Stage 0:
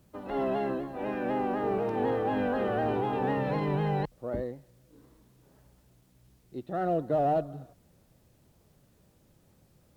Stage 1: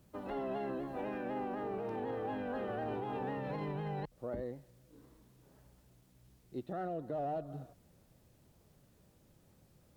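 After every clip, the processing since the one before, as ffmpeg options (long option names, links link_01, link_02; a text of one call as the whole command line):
ffmpeg -i in.wav -af "alimiter=level_in=4.5dB:limit=-24dB:level=0:latency=1:release=167,volume=-4.5dB,volume=-2.5dB" out.wav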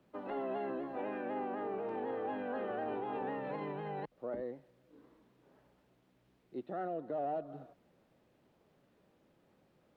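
ffmpeg -i in.wav -filter_complex "[0:a]acrossover=split=200 3600:gain=0.158 1 0.141[link_01][link_02][link_03];[link_01][link_02][link_03]amix=inputs=3:normalize=0,volume=1dB" out.wav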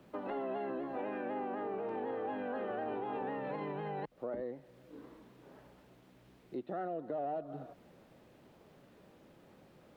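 ffmpeg -i in.wav -af "acompressor=threshold=-53dB:ratio=2,volume=9.5dB" out.wav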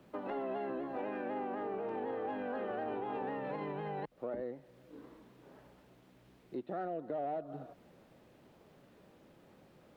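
ffmpeg -i in.wav -af "aeval=exprs='0.0422*(cos(1*acos(clip(val(0)/0.0422,-1,1)))-cos(1*PI/2))+0.000596*(cos(7*acos(clip(val(0)/0.0422,-1,1)))-cos(7*PI/2))':channel_layout=same" out.wav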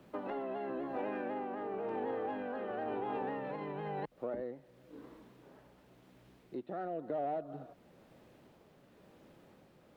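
ffmpeg -i in.wav -af "tremolo=f=0.97:d=0.3,volume=1.5dB" out.wav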